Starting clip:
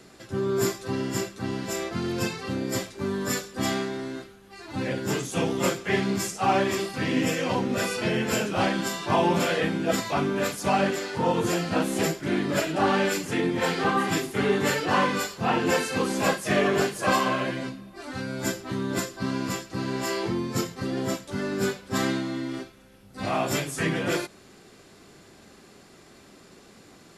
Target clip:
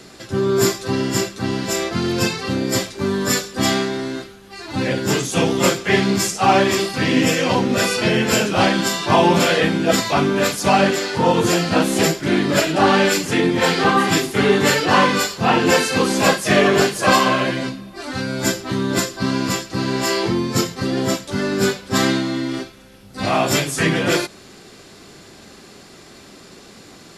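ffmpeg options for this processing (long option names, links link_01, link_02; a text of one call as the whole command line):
ffmpeg -i in.wav -af "equalizer=frequency=4500:width=0.99:gain=4,volume=8dB" out.wav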